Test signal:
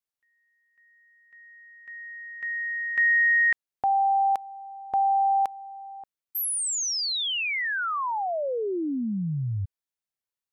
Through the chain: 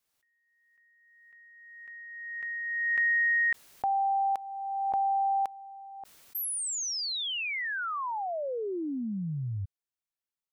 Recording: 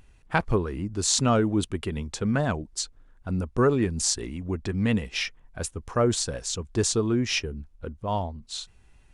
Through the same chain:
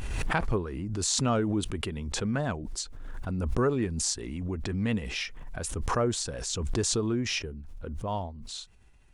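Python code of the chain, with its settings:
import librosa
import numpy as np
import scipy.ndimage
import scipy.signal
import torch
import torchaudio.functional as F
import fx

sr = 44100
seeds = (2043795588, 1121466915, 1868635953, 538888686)

y = fx.pre_swell(x, sr, db_per_s=27.0)
y = y * librosa.db_to_amplitude(-5.0)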